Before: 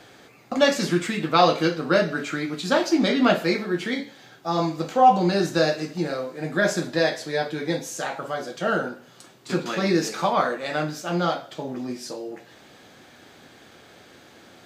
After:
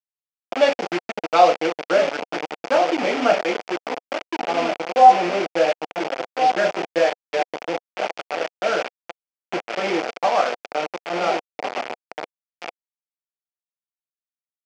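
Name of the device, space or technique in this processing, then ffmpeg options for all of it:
hand-held game console: -filter_complex "[0:a]afwtdn=0.0398,asettb=1/sr,asplit=3[link_01][link_02][link_03];[link_01]atrim=end=3.814[link_04];[link_02]atrim=start=3.81:end=4.69,asetpts=PTS-STARTPTS,afade=type=in:duration=0.004:curve=qsin,afade=type=out:start_time=0.876:duration=0.004:curve=qsin,highshelf=frequency=2700:gain=-10.5[link_05];[link_03]atrim=start=4.686[link_06];[link_04][link_05]acrossfade=duration=0.004:curve1=hsin:curve2=qsin[link_07];[link_07][link_06]acrossfade=duration=0.004:curve1=qsin:curve2=hsin,asplit=2[link_08][link_09];[link_09]adelay=1399,volume=-7dB,highshelf=frequency=4000:gain=-31.5[link_10];[link_08][link_10]amix=inputs=2:normalize=0,acrusher=bits=3:mix=0:aa=0.000001,highpass=400,equalizer=frequency=500:width_type=q:width=4:gain=3,equalizer=frequency=720:width_type=q:width=4:gain=6,equalizer=frequency=1100:width_type=q:width=4:gain=-4,equalizer=frequency=1700:width_type=q:width=4:gain=-4,equalizer=frequency=2400:width_type=q:width=4:gain=3,equalizer=frequency=3900:width_type=q:width=4:gain=-8,lowpass=frequency=5100:width=0.5412,lowpass=frequency=5100:width=1.3066,volume=1dB"

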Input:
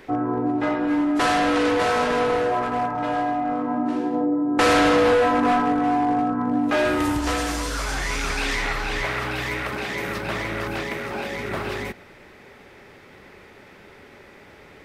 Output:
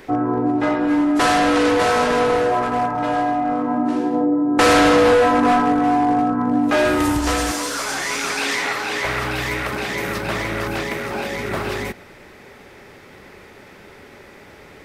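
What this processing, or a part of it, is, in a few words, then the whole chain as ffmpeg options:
exciter from parts: -filter_complex "[0:a]asplit=2[link_01][link_02];[link_02]highpass=4100,asoftclip=type=tanh:threshold=-28.5dB,volume=-5.5dB[link_03];[link_01][link_03]amix=inputs=2:normalize=0,asettb=1/sr,asplit=3[link_04][link_05][link_06];[link_04]atrim=end=7.514[link_07];[link_05]atrim=start=7.51:end=9.05,asetpts=PTS-STARTPTS,afade=type=in:duration=0.004:curve=qsin,afade=type=out:start_time=1.536:duration=0.004:curve=qsin,highpass=230[link_08];[link_06]atrim=start=9.046[link_09];[link_07][link_08]acrossfade=duration=0.004:curve1=hsin:curve2=qsin[link_10];[link_10][link_09]acrossfade=duration=0.004:curve1=qsin:curve2=hsin,volume=4dB"

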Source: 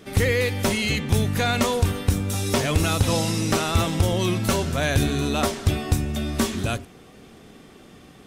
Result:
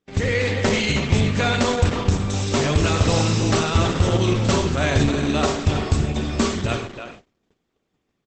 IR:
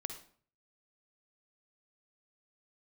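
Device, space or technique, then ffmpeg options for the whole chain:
speakerphone in a meeting room: -filter_complex "[1:a]atrim=start_sample=2205[link_01];[0:a][link_01]afir=irnorm=-1:irlink=0,asplit=2[link_02][link_03];[link_03]adelay=320,highpass=300,lowpass=3400,asoftclip=type=hard:threshold=-19.5dB,volume=-7dB[link_04];[link_02][link_04]amix=inputs=2:normalize=0,dynaudnorm=framelen=100:gausssize=7:maxgain=4.5dB,agate=range=-30dB:threshold=-38dB:ratio=16:detection=peak" -ar 48000 -c:a libopus -b:a 12k

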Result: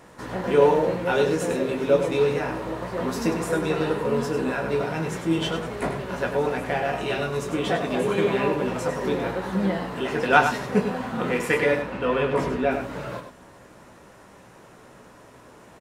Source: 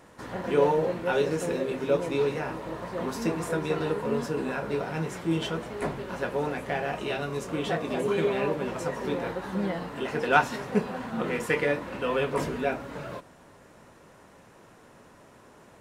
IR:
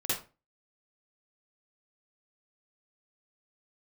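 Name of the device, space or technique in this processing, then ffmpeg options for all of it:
slapback doubling: -filter_complex "[0:a]asettb=1/sr,asplit=3[link_01][link_02][link_03];[link_01]atrim=end=11.824[link_04];[link_02]atrim=start=11.82:end=12.71,asetpts=PTS-STARTPTS,afade=type=in:duration=0.004:curve=qsin,afade=type=out:start_time=0.886:duration=0.004:curve=qsin,highshelf=frequency=5500:gain=-11.5[link_05];[link_03]atrim=start=12.706[link_06];[link_04][link_05]acrossfade=duration=0.004:curve1=hsin:curve2=qsin[link_07];[link_07][link_06]acrossfade=duration=0.004:curve1=qsin:curve2=hsin,asplit=3[link_08][link_09][link_10];[link_09]adelay=16,volume=-8dB[link_11];[link_10]adelay=100,volume=-8dB[link_12];[link_08][link_11][link_12]amix=inputs=3:normalize=0,volume=3.5dB"

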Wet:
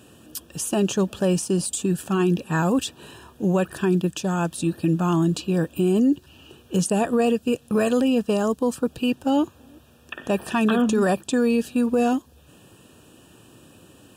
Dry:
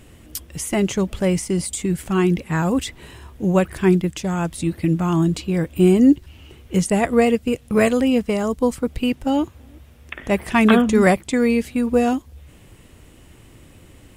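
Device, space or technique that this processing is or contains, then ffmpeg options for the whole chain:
PA system with an anti-feedback notch: -af "highpass=150,asuperstop=centerf=2100:order=12:qfactor=3.8,alimiter=limit=-13dB:level=0:latency=1:release=27"

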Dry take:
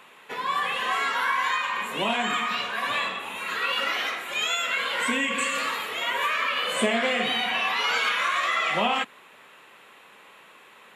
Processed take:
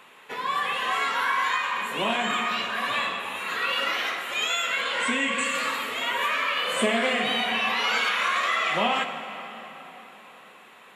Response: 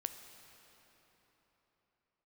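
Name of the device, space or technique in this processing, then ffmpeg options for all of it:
cathedral: -filter_complex "[1:a]atrim=start_sample=2205[link_01];[0:a][link_01]afir=irnorm=-1:irlink=0,asettb=1/sr,asplit=3[link_02][link_03][link_04];[link_02]atrim=end=4.814[link_05];[link_03]atrim=start=4.81:end=5.45,asetpts=PTS-STARTPTS,afade=type=in:duration=0.004:curve=qsin,afade=type=out:start_time=0.636:duration=0.004:curve=qsin,lowpass=frequency=9900:width=0.5412,lowpass=frequency=9900:width=1.3066[link_06];[link_04]atrim=start=5.446[link_07];[link_05][link_06]acrossfade=duration=0.004:curve1=hsin:curve2=qsin[link_08];[link_08][link_07]acrossfade=duration=0.004:curve1=qsin:curve2=hsin,volume=1.5dB"

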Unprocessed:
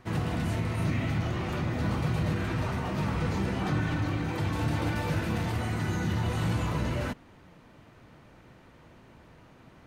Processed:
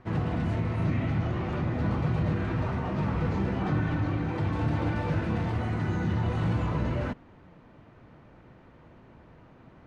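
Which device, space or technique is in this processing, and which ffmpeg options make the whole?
through cloth: -af "lowpass=7100,highshelf=frequency=3000:gain=-13.5,volume=1.5dB"

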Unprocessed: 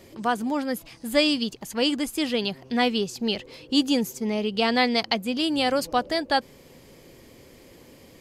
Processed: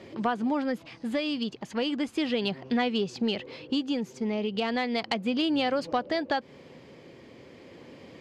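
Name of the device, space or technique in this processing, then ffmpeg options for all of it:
AM radio: -af "highpass=110,lowpass=3500,acompressor=threshold=-26dB:ratio=10,asoftclip=type=tanh:threshold=-17dB,tremolo=f=0.35:d=0.29,volume=4dB"

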